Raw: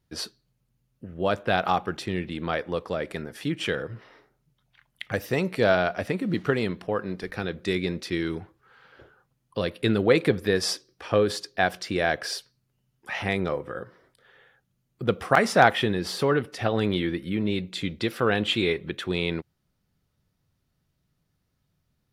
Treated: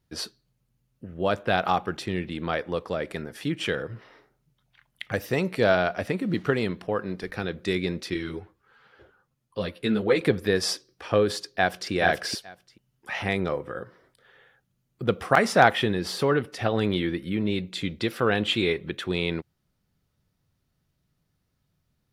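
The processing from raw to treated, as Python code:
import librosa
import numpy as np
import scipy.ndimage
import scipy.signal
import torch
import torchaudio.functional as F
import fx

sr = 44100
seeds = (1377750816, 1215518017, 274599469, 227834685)

y = fx.ensemble(x, sr, at=(8.14, 10.21))
y = fx.echo_throw(y, sr, start_s=11.38, length_s=0.53, ms=430, feedback_pct=10, wet_db=-2.0)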